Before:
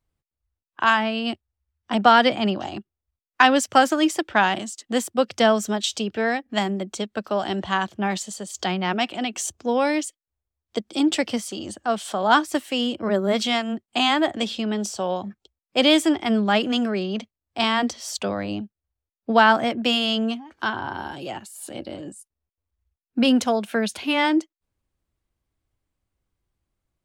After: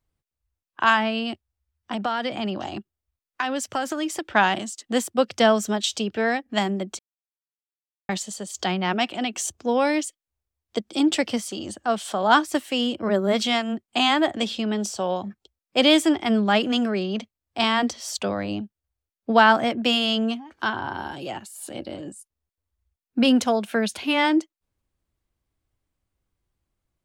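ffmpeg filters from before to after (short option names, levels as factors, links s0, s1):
-filter_complex "[0:a]asettb=1/sr,asplit=3[s0][s1][s2];[s0]atrim=end=1.234[s3];[s1]atrim=start=1.23:end=4.33,asetpts=PTS-STARTPTS,afade=t=in:d=0.004:c=qsin,afade=t=out:st=3.096:d=0.004:c=qsin,acompressor=threshold=0.0562:ratio=3:attack=3.2:release=140:knee=1:detection=peak[s4];[s2]atrim=start=4.326[s5];[s3][s4]acrossfade=d=0.004:c1=hsin:c2=qsin[s6];[s6][s5]acrossfade=d=0.004:c1=qsin:c2=hsin,asplit=3[s7][s8][s9];[s7]atrim=end=6.99,asetpts=PTS-STARTPTS,afade=t=out:st=6.986:d=0.004:c=hsin[s10];[s8]atrim=start=6.99:end=8.09,asetpts=PTS-STARTPTS,volume=0[s11];[s9]atrim=start=8.09,asetpts=PTS-STARTPTS,afade=t=in:d=0.004:c=hsin[s12];[s10][s11][s12]concat=n=3:v=0:a=1"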